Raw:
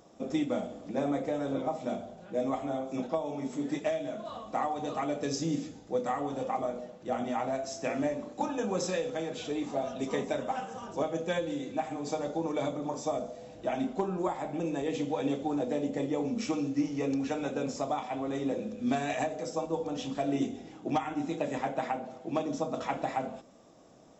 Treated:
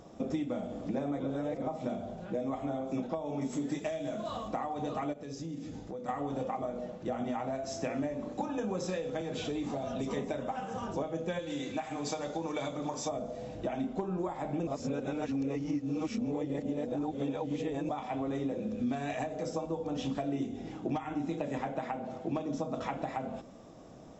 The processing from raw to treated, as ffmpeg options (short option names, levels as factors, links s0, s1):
-filter_complex "[0:a]asettb=1/sr,asplit=3[s0][s1][s2];[s0]atrim=end=3.414[s3];[s1]atrim=start=3.41:end=4.48,asetpts=PTS-STARTPTS,afade=t=in:d=0.004:c=qsin,afade=t=out:st=1.066:d=0.004:c=qsin,aemphasis=mode=production:type=50fm[s4];[s2]atrim=start=4.476[s5];[s3][s4]acrossfade=d=0.004:c1=hsin:c2=qsin[s6];[s6][s5]acrossfade=d=0.004:c1=qsin:c2=hsin,asplit=3[s7][s8][s9];[s7]afade=t=out:st=5.12:d=0.02[s10];[s8]acompressor=threshold=0.00631:ratio=6:attack=3.2:release=140:knee=1:detection=peak,afade=t=in:st=5.12:d=0.02,afade=t=out:st=6.08:d=0.02[s11];[s9]afade=t=in:st=6.08:d=0.02[s12];[s10][s11][s12]amix=inputs=3:normalize=0,asettb=1/sr,asplit=3[s13][s14][s15];[s13]atrim=end=9.214[s16];[s14]atrim=start=9.21:end=10.17,asetpts=PTS-STARTPTS,afade=t=in:d=0.004:c=qsin,afade=t=out:st=0.956:d=0.004:c=qsin,acrossover=split=150|3000[s17][s18][s19];[s18]acompressor=threshold=0.02:ratio=6:attack=3.2:release=140:knee=2.83:detection=peak[s20];[s17][s20][s19]amix=inputs=3:normalize=0[s21];[s15]atrim=start=10.166[s22];[s16][s21]acrossfade=d=0.004:c1=hsin:c2=qsin[s23];[s23][s22]acrossfade=d=0.004:c1=qsin:c2=hsin,asettb=1/sr,asplit=3[s24][s25][s26];[s24]atrim=end=11.394[s27];[s25]atrim=start=11.39:end=13.09,asetpts=PTS-STARTPTS,afade=t=in:d=0.004:c=qsin,afade=t=out:st=1.696:d=0.004:c=qsin,tiltshelf=f=970:g=-6[s28];[s26]atrim=start=13.086[s29];[s27][s28]acrossfade=d=0.004:c1=hsin:c2=qsin[s30];[s30][s29]acrossfade=d=0.004:c1=qsin:c2=hsin,asplit=5[s31][s32][s33][s34][s35];[s31]atrim=end=1.202[s36];[s32]atrim=start=1.198:end=1.622,asetpts=PTS-STARTPTS,areverse[s37];[s33]atrim=start=1.618:end=14.672[s38];[s34]atrim=start=14.668:end=17.892,asetpts=PTS-STARTPTS,areverse[s39];[s35]atrim=start=17.888[s40];[s36][s37]acrossfade=d=0.004:c1=hsin:c2=hsin[s41];[s41][s38]acrossfade=d=0.004:c1=hsin:c2=hsin[s42];[s42][s39]acrossfade=d=0.004:c1=hsin:c2=hsin[s43];[s43][s40]acrossfade=d=0.004:c1=hsin:c2=hsin,highshelf=f=5800:g=-6.5,acompressor=threshold=0.0141:ratio=6,lowshelf=f=170:g=8.5,volume=1.58"